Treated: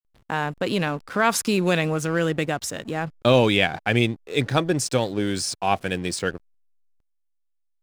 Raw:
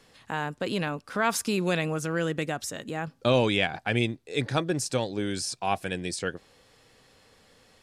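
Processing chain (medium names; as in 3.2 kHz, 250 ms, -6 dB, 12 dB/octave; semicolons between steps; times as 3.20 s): hysteresis with a dead band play -41.5 dBFS; trim +5.5 dB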